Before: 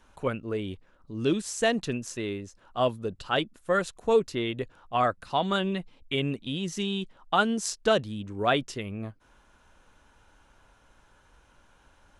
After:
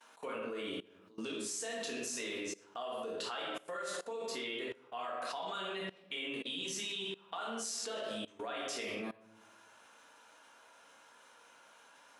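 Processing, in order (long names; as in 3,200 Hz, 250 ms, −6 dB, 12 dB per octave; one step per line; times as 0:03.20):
downward compressor 8 to 1, threshold −29 dBFS, peak gain reduction 12.5 dB
high-pass filter 510 Hz 12 dB per octave
high-shelf EQ 3,700 Hz +4.5 dB
rectangular room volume 240 cubic metres, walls mixed, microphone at 1.7 metres
output level in coarse steps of 21 dB
level +2 dB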